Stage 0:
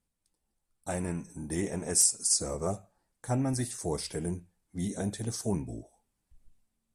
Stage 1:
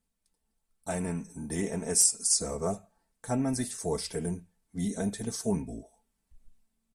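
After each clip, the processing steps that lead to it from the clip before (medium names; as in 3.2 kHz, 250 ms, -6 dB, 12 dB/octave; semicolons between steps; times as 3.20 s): comb 4.5 ms, depth 48%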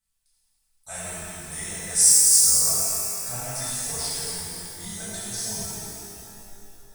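amplifier tone stack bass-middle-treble 10-0-10; pitch-shifted reverb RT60 2.8 s, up +12 st, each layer -8 dB, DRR -11 dB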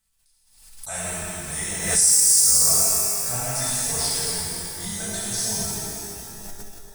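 peak limiter -11.5 dBFS, peak gain reduction 7.5 dB; reverberation RT60 2.8 s, pre-delay 57 ms, DRR 11.5 dB; swell ahead of each attack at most 66 dB/s; trim +4.5 dB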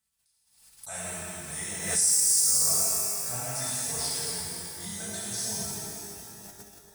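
high-pass 80 Hz; trim -6.5 dB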